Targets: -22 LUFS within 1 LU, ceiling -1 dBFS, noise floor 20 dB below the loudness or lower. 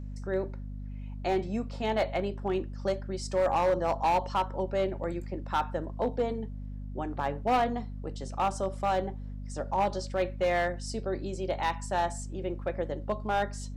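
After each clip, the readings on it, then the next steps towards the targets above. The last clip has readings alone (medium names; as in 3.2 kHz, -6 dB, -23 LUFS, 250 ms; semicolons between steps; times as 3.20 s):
clipped samples 1.0%; clipping level -20.5 dBFS; hum 50 Hz; highest harmonic 250 Hz; hum level -36 dBFS; loudness -31.0 LUFS; peak level -20.5 dBFS; loudness target -22.0 LUFS
-> clip repair -20.5 dBFS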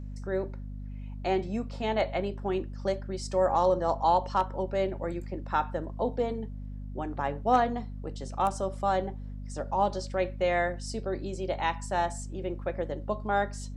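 clipped samples 0.0%; hum 50 Hz; highest harmonic 250 Hz; hum level -36 dBFS
-> de-hum 50 Hz, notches 5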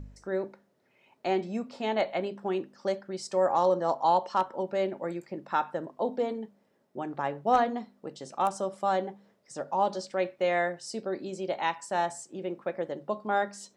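hum not found; loudness -30.5 LUFS; peak level -11.5 dBFS; loudness target -22.0 LUFS
-> trim +8.5 dB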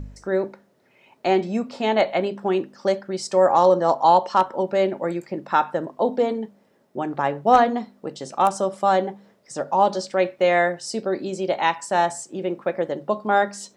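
loudness -22.0 LUFS; peak level -3.0 dBFS; noise floor -61 dBFS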